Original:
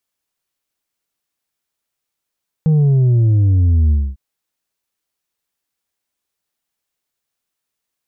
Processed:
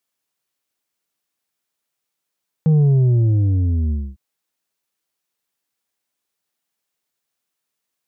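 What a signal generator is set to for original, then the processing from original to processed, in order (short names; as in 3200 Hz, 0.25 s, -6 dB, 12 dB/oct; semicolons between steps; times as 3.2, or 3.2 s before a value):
sub drop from 160 Hz, over 1.50 s, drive 4 dB, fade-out 0.25 s, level -10 dB
HPF 110 Hz 12 dB/oct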